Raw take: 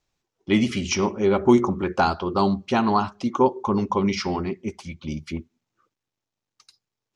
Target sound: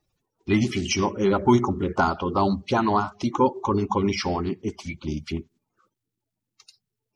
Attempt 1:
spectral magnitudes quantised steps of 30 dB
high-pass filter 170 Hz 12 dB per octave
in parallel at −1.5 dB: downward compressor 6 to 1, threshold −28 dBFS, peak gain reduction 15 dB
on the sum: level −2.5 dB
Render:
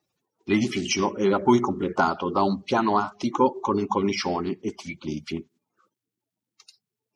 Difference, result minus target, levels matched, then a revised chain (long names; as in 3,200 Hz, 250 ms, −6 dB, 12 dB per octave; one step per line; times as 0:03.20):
125 Hz band −5.0 dB
spectral magnitudes quantised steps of 30 dB
in parallel at −1.5 dB: downward compressor 6 to 1, threshold −28 dBFS, peak gain reduction 15 dB
on the sum: level −2.5 dB